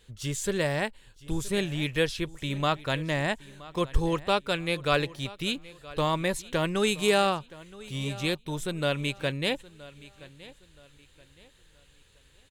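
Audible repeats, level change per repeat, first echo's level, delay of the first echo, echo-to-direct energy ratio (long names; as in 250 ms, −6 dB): 2, −9.5 dB, −19.5 dB, 972 ms, −19.0 dB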